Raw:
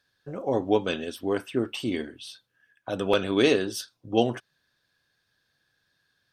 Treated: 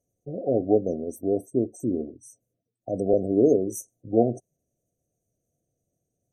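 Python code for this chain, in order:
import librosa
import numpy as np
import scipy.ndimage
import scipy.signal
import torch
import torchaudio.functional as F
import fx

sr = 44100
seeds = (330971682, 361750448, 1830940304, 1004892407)

y = fx.spec_gate(x, sr, threshold_db=-30, keep='strong')
y = fx.brickwall_bandstop(y, sr, low_hz=750.0, high_hz=5800.0)
y = F.gain(torch.from_numpy(y), 2.5).numpy()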